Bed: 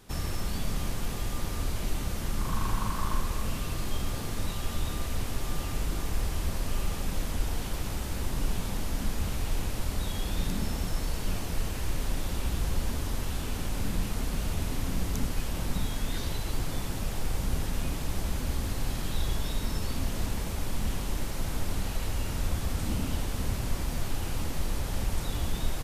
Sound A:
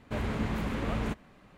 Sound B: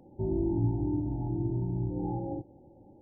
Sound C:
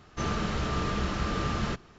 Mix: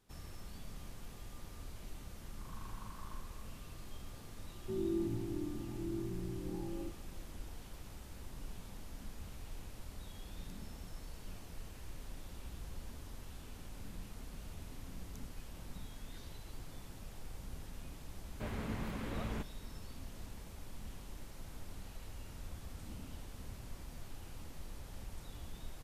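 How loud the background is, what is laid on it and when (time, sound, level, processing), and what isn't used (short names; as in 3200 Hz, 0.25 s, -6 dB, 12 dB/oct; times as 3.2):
bed -17.5 dB
4.49 add B -17 dB + small resonant body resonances 220/350 Hz, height 14 dB, ringing for 50 ms
18.29 add A -9 dB
not used: C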